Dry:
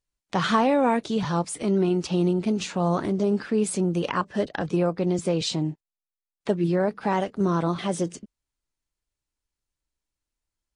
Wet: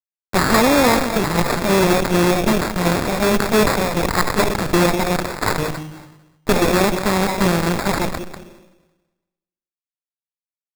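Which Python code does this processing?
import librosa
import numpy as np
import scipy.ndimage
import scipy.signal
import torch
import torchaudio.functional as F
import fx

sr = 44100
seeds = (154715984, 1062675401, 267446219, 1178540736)

p1 = fx.delta_hold(x, sr, step_db=-31.0)
p2 = fx.high_shelf(p1, sr, hz=8900.0, db=9.0)
p3 = fx.level_steps(p2, sr, step_db=11)
p4 = p2 + F.gain(torch.from_numpy(p3), -2.0).numpy()
p5 = fx.highpass(p4, sr, hz=1100.0, slope=24, at=(5.16, 5.58))
p6 = p5 + fx.echo_single(p5, sr, ms=193, db=-14.5, dry=0)
p7 = fx.rev_plate(p6, sr, seeds[0], rt60_s=1.4, hf_ratio=0.95, predelay_ms=0, drr_db=15.0)
p8 = fx.cheby_harmonics(p7, sr, harmonics=(8,), levels_db=(-9,), full_scale_db=-6.0)
p9 = fx.sample_hold(p8, sr, seeds[1], rate_hz=3000.0, jitter_pct=0)
y = fx.sustainer(p9, sr, db_per_s=53.0)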